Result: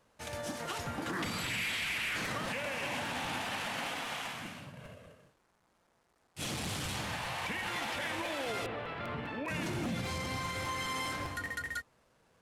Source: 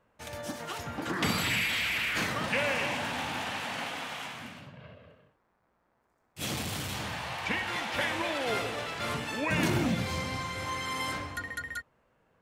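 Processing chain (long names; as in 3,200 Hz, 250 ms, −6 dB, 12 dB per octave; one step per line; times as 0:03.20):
variable-slope delta modulation 64 kbit/s
brickwall limiter −27.5 dBFS, peak gain reduction 11.5 dB
0:08.66–0:09.48: high-frequency loss of the air 410 metres
regular buffer underruns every 0.20 s, samples 256, repeat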